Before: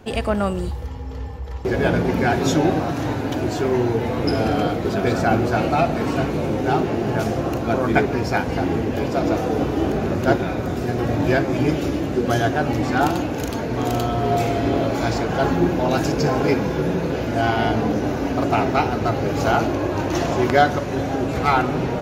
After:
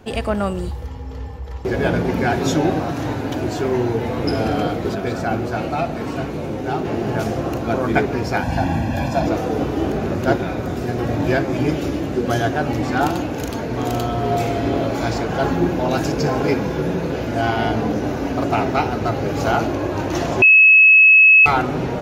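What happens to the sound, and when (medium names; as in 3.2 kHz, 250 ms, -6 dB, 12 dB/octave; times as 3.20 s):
4.95–6.85 s: gain -3.5 dB
8.42–9.27 s: comb 1.2 ms, depth 89%
20.42–21.46 s: bleep 2.58 kHz -6 dBFS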